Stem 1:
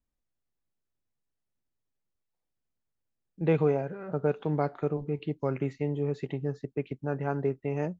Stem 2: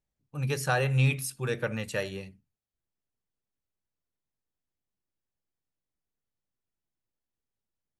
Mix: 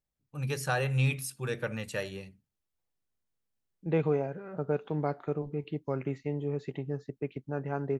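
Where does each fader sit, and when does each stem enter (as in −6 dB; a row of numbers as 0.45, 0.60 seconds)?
−3.0, −3.0 decibels; 0.45, 0.00 seconds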